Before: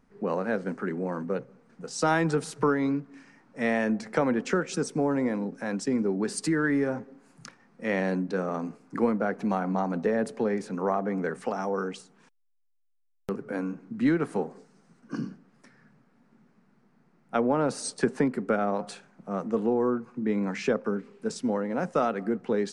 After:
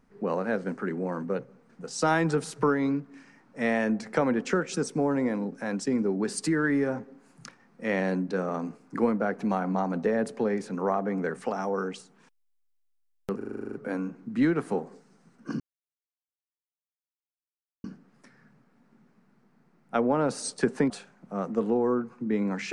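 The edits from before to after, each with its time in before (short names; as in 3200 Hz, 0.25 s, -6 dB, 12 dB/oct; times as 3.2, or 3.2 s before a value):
13.37 stutter 0.04 s, 10 plays
15.24 insert silence 2.24 s
18.3–18.86 cut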